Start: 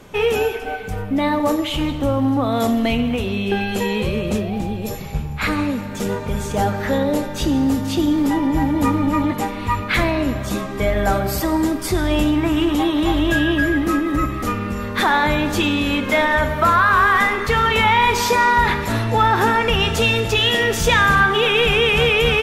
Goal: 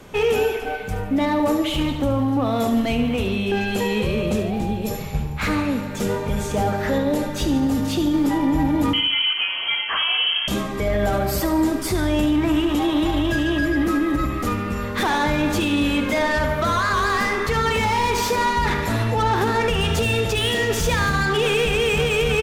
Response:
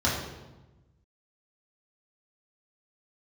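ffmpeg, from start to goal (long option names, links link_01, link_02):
-filter_complex "[0:a]acrossover=split=610[link_01][link_02];[link_02]asoftclip=type=tanh:threshold=-20.5dB[link_03];[link_01][link_03]amix=inputs=2:normalize=0,asettb=1/sr,asplit=3[link_04][link_05][link_06];[link_04]atrim=end=8.934[link_07];[link_05]atrim=start=8.93:end=10.48,asetpts=PTS-STARTPTS,afade=type=in:duration=0.004:curve=qsin,afade=type=out:start_time=1.546:duration=0.004:curve=qsin,lowpass=frequency=2800:width_type=q:width=0.5098,lowpass=frequency=2800:width_type=q:width=0.6013,lowpass=frequency=2800:width_type=q:width=0.9,lowpass=frequency=2800:width_type=q:width=2.563,afreqshift=-3300[link_08];[link_06]atrim=start=10.476[link_09];[link_07][link_08]acrossfade=duration=0.004:curve1=hsin:curve2=qsin[link_10];[link_10][link_09]acrossfade=duration=0.004:curve1=qsin:curve2=hsin,alimiter=limit=-13dB:level=0:latency=1:release=30,aecho=1:1:73|146|219|292|365:0.282|0.124|0.0546|0.024|0.0106"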